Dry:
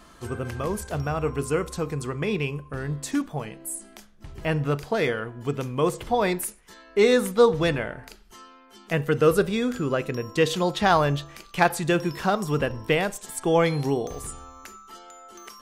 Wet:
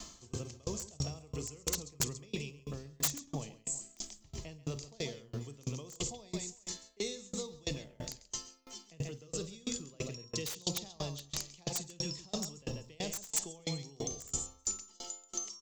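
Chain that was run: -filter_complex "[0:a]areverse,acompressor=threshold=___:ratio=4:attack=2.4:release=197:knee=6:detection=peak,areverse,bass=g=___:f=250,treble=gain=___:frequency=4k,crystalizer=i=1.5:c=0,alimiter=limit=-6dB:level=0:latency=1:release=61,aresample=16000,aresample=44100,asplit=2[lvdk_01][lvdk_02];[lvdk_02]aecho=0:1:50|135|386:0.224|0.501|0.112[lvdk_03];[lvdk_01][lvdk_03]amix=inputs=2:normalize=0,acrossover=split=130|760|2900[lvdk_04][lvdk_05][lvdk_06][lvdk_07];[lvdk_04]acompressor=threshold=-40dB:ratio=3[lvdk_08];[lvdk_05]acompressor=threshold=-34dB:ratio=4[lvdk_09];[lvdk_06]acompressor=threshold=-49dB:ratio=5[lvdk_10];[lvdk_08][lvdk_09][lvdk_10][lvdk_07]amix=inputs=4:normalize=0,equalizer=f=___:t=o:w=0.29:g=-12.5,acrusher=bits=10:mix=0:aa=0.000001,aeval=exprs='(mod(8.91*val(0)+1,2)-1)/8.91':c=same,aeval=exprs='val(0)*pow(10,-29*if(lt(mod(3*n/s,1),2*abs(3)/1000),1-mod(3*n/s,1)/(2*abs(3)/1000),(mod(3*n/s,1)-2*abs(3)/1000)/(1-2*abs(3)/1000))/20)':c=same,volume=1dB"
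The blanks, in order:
-30dB, 4, 14, 1.5k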